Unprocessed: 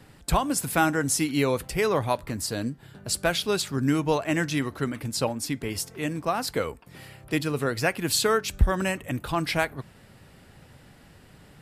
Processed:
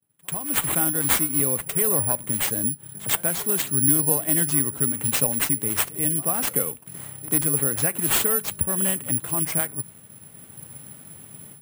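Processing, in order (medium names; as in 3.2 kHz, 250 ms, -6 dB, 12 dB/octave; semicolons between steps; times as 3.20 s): FFT filter 150 Hz 0 dB, 4 kHz -16 dB, 8.9 kHz +3 dB; in parallel at -1 dB: compression, threshold -36 dBFS, peak gain reduction 21.5 dB; on the sum: high-pass 110 Hz 24 dB/octave; on a send: reverse echo 93 ms -18.5 dB; on the sum: dynamic bell 2 kHz, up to +5 dB, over -49 dBFS, Q 1.5; level rider gain up to 13 dB; expander -37 dBFS; careless resampling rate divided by 4×, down none, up zero stuff; trim -11.5 dB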